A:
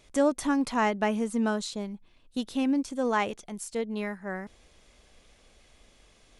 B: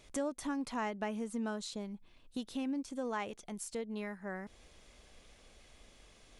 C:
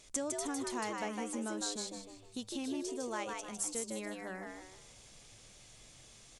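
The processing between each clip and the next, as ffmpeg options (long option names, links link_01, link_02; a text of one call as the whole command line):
ffmpeg -i in.wav -af "acompressor=threshold=-41dB:ratio=2,volume=-1dB" out.wav
ffmpeg -i in.wav -filter_complex "[0:a]equalizer=frequency=7300:width_type=o:width=1.6:gain=12,bandreject=frequency=50:width_type=h:width=6,bandreject=frequency=100:width_type=h:width=6,bandreject=frequency=150:width_type=h:width=6,bandreject=frequency=200:width_type=h:width=6,asplit=2[link_01][link_02];[link_02]asplit=5[link_03][link_04][link_05][link_06][link_07];[link_03]adelay=155,afreqshift=93,volume=-3.5dB[link_08];[link_04]adelay=310,afreqshift=186,volume=-12.6dB[link_09];[link_05]adelay=465,afreqshift=279,volume=-21.7dB[link_10];[link_06]adelay=620,afreqshift=372,volume=-30.9dB[link_11];[link_07]adelay=775,afreqshift=465,volume=-40dB[link_12];[link_08][link_09][link_10][link_11][link_12]amix=inputs=5:normalize=0[link_13];[link_01][link_13]amix=inputs=2:normalize=0,volume=-3dB" out.wav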